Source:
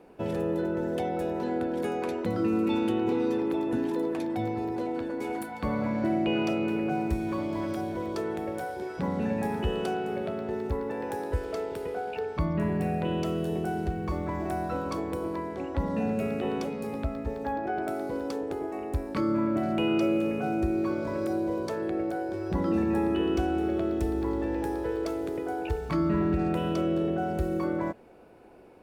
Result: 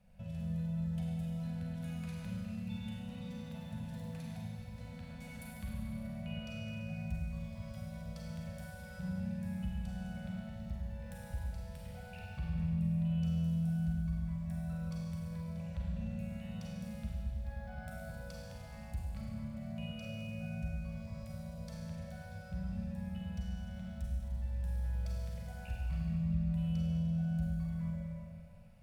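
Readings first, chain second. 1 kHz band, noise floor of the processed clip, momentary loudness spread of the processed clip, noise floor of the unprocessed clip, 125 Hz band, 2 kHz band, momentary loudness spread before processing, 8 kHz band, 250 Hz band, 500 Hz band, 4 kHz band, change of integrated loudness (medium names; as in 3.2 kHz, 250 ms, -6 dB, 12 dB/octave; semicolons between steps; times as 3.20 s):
-22.5 dB, -49 dBFS, 12 LU, -37 dBFS, -1.5 dB, -13.0 dB, 7 LU, no reading, -11.5 dB, -23.5 dB, -11.0 dB, -10.0 dB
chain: Chebyshev band-stop 210–570 Hz, order 3; amplifier tone stack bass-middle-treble 10-0-1; compression 2:1, threshold -59 dBFS, peak gain reduction 15 dB; Schroeder reverb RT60 2.4 s, combs from 33 ms, DRR -4 dB; trim +11.5 dB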